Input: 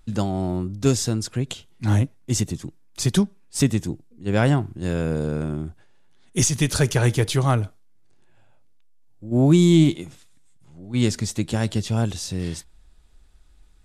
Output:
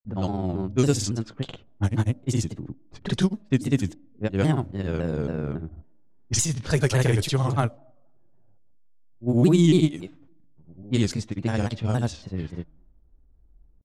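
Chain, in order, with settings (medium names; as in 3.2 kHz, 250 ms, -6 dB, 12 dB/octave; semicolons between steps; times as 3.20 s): granulator 100 ms, grains 20 per s, spray 100 ms, pitch spread up and down by 0 st; level-controlled noise filter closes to 460 Hz, open at -17.5 dBFS; on a send at -14.5 dB: two resonant band-passes 420 Hz, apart 0.97 oct + reverberation RT60 1.0 s, pre-delay 3 ms; on the sum: vibrato with a chosen wave saw down 3.6 Hz, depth 160 cents; trim -1.5 dB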